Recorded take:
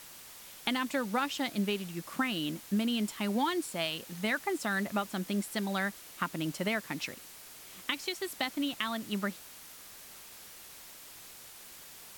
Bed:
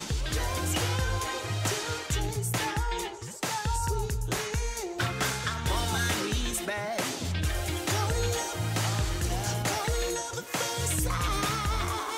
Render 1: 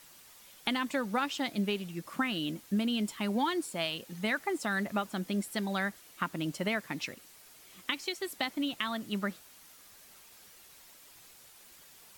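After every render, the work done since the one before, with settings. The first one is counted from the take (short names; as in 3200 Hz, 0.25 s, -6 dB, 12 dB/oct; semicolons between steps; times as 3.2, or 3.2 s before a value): denoiser 7 dB, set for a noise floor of -51 dBFS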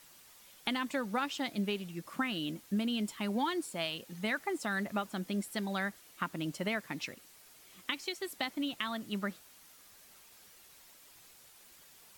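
gain -2.5 dB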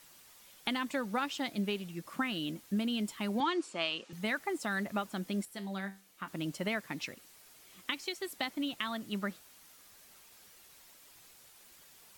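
3.4–4.13 speaker cabinet 220–7400 Hz, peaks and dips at 340 Hz +3 dB, 1200 Hz +7 dB, 2700 Hz +5 dB; 5.45–6.28 resonator 97 Hz, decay 0.33 s, mix 70%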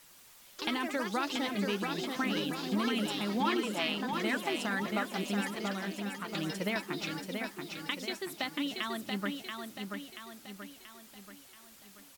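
echoes that change speed 84 ms, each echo +4 st, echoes 3, each echo -6 dB; feedback echo 0.682 s, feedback 49%, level -5 dB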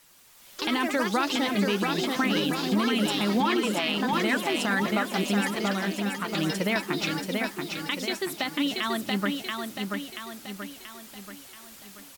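limiter -24 dBFS, peak gain reduction 6 dB; AGC gain up to 8.5 dB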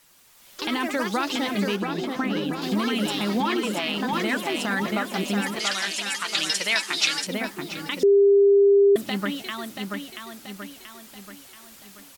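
1.76–2.62 high shelf 2400 Hz -9.5 dB; 5.59–7.27 weighting filter ITU-R 468; 8.03–8.96 bleep 400 Hz -12.5 dBFS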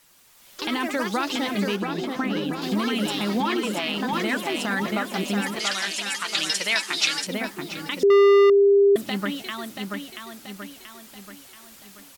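8.1–8.5 sample leveller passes 3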